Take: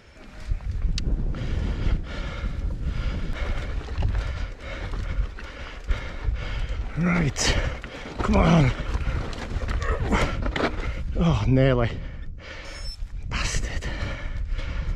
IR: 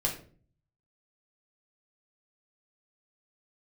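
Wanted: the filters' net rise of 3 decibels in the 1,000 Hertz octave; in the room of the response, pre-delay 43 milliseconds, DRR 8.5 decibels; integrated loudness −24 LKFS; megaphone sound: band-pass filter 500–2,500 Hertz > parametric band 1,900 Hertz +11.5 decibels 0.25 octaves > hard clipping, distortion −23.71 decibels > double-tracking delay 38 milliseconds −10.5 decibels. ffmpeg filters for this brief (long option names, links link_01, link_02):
-filter_complex "[0:a]equalizer=frequency=1000:width_type=o:gain=4,asplit=2[link_01][link_02];[1:a]atrim=start_sample=2205,adelay=43[link_03];[link_02][link_03]afir=irnorm=-1:irlink=0,volume=-14.5dB[link_04];[link_01][link_04]amix=inputs=2:normalize=0,highpass=500,lowpass=2500,equalizer=frequency=1900:width_type=o:width=0.25:gain=11.5,asoftclip=type=hard:threshold=-14dB,asplit=2[link_05][link_06];[link_06]adelay=38,volume=-10.5dB[link_07];[link_05][link_07]amix=inputs=2:normalize=0,volume=5dB"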